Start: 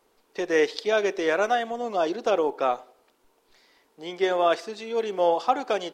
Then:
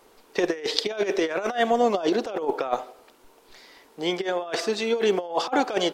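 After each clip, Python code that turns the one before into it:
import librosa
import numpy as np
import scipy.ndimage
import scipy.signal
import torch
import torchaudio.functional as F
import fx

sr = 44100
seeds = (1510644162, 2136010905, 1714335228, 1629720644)

y = fx.over_compress(x, sr, threshold_db=-28.0, ratio=-0.5)
y = y * 10.0 ** (5.0 / 20.0)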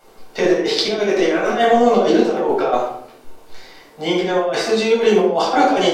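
y = fx.room_shoebox(x, sr, seeds[0], volume_m3=900.0, walls='furnished', distance_m=7.4)
y = y * 10.0 ** (-1.0 / 20.0)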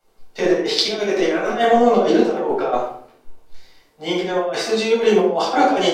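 y = fx.band_widen(x, sr, depth_pct=40)
y = y * 10.0 ** (-1.5 / 20.0)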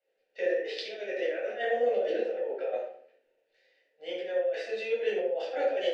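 y = fx.vowel_filter(x, sr, vowel='e')
y = fx.low_shelf(y, sr, hz=400.0, db=-11.0)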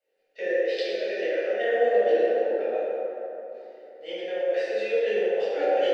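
y = fx.rev_plate(x, sr, seeds[1], rt60_s=3.5, hf_ratio=0.45, predelay_ms=0, drr_db=-3.5)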